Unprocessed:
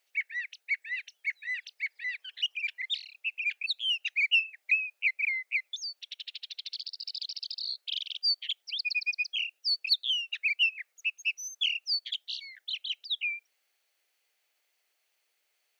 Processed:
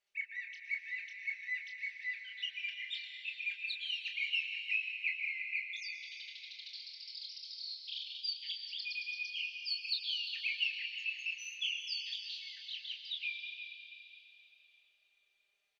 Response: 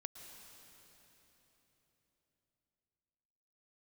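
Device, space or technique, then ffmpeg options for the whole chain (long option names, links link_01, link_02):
cave: -filter_complex "[0:a]aemphasis=mode=reproduction:type=riaa,aecho=1:1:5:0.65,aecho=1:1:25|38:0.501|0.316,aecho=1:1:349:0.251[link_01];[1:a]atrim=start_sample=2205[link_02];[link_01][link_02]afir=irnorm=-1:irlink=0,highshelf=frequency=2500:gain=10.5,volume=-7.5dB"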